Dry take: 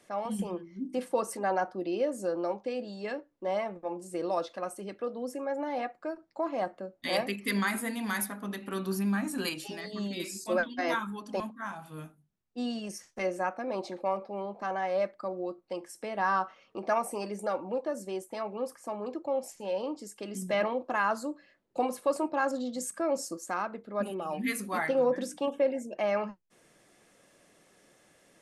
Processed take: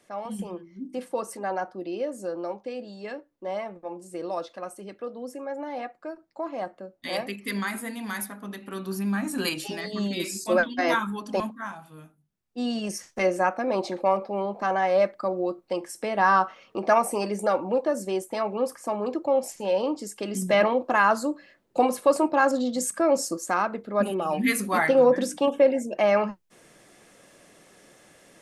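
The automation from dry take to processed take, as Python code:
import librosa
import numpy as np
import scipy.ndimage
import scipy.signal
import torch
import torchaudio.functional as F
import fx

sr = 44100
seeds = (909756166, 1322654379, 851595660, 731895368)

y = fx.gain(x, sr, db=fx.line((8.83, -0.5), (9.58, 6.5), (11.48, 6.5), (12.01, -4.5), (12.85, 8.0)))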